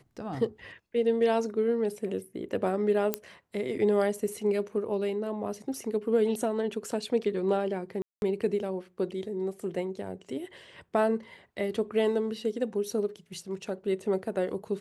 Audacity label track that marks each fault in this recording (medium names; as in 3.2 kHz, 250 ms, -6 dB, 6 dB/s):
3.140000	3.140000	pop -10 dBFS
8.020000	8.220000	dropout 201 ms